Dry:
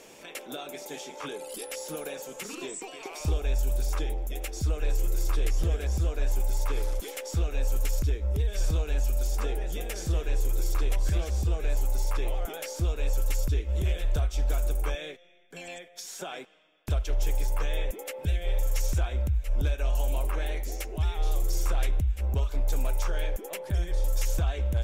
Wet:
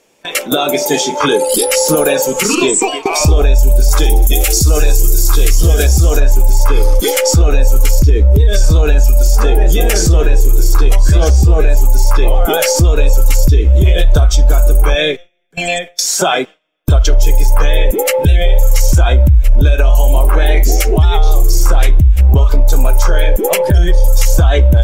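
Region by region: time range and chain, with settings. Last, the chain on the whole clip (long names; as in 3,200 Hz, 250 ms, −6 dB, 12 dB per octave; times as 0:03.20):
0:03.91–0:06.20: high-shelf EQ 4,400 Hz +9.5 dB + delay with a high-pass on its return 62 ms, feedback 84%, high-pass 4,700 Hz, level −13 dB
whole clip: noise gate with hold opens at −32 dBFS; noise reduction from a noise print of the clip's start 10 dB; boost into a limiter +28 dB; level −1 dB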